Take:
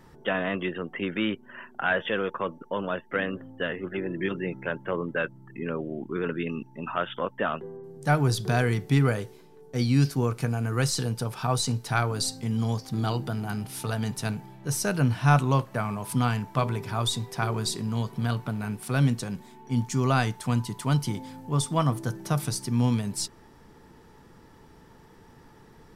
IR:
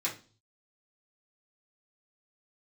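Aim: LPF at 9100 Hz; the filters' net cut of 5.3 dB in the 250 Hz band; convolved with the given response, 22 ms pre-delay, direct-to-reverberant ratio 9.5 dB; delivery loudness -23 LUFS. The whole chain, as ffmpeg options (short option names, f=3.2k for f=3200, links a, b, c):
-filter_complex "[0:a]lowpass=9.1k,equalizer=f=250:t=o:g=-7.5,asplit=2[a][b];[1:a]atrim=start_sample=2205,adelay=22[c];[b][c]afir=irnorm=-1:irlink=0,volume=-14.5dB[d];[a][d]amix=inputs=2:normalize=0,volume=6.5dB"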